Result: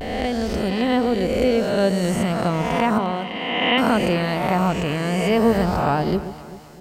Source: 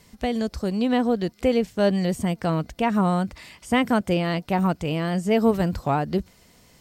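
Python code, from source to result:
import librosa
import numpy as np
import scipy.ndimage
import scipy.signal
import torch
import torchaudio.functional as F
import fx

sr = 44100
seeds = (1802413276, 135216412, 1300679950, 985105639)

y = fx.spec_swells(x, sr, rise_s=1.68)
y = fx.vibrato(y, sr, rate_hz=0.39, depth_cents=36.0)
y = fx.cabinet(y, sr, low_hz=200.0, low_slope=12, high_hz=3700.0, hz=(210.0, 1400.0, 2800.0), db=(-7, -9, 9), at=(2.98, 3.78))
y = fx.echo_alternate(y, sr, ms=129, hz=900.0, feedback_pct=69, wet_db=-11)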